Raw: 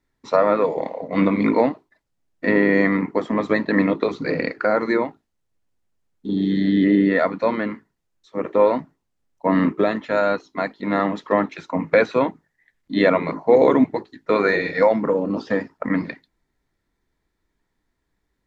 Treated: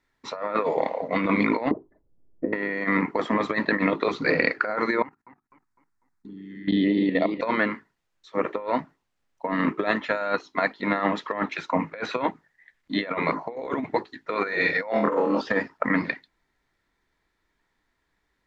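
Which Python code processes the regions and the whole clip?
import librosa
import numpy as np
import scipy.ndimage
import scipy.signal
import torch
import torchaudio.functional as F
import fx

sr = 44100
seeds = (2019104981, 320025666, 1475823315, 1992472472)

y = fx.chain(x, sr, fx.over_compress(threshold_db=-28.0, ratio=-1.0),
    fx.lowpass_res(hz=400.0, q=1.9),
    fx.low_shelf(hz=94.0, db=11.5), at=(1.71, 2.53))
y = fx.chain(y, sr, fx.level_steps(step_db=18),
    fx.env_phaser(low_hz=520.0, high_hz=1500.0, full_db=-21.0),
    fx.echo_warbled(ms=250, feedback_pct=42, rate_hz=2.8, cents=144, wet_db=-8.5), at=(5.02, 7.41))
y = fx.chain(y, sr, fx.highpass(hz=220.0, slope=12),
    fx.room_flutter(wall_m=4.1, rt60_s=0.41), at=(14.91, 15.41))
y = fx.lowpass(y, sr, hz=2300.0, slope=6)
y = fx.tilt_shelf(y, sr, db=-7.0, hz=750.0)
y = fx.over_compress(y, sr, threshold_db=-23.0, ratio=-0.5)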